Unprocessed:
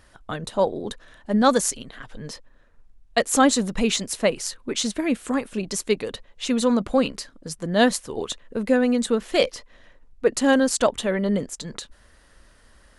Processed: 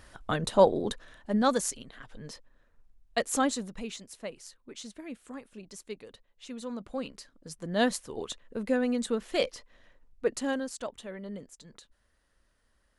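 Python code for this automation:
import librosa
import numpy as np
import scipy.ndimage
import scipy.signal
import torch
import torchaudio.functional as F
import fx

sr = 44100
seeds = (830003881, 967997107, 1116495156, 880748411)

y = fx.gain(x, sr, db=fx.line((0.73, 1.0), (1.5, -8.0), (3.31, -8.0), (3.97, -18.5), (6.62, -18.5), (7.76, -8.0), (10.25, -8.0), (10.76, -17.5)))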